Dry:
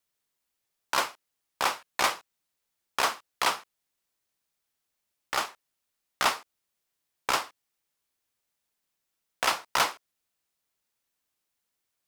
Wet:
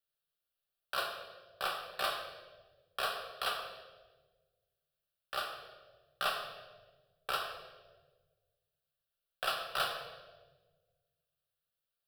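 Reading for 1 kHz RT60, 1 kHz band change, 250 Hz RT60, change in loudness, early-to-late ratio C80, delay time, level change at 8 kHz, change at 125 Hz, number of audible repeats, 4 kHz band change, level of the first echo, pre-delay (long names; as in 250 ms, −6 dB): 1.1 s, −9.0 dB, 1.6 s, −8.5 dB, 7.0 dB, no echo audible, −15.5 dB, −6.5 dB, no echo audible, −6.0 dB, no echo audible, 5 ms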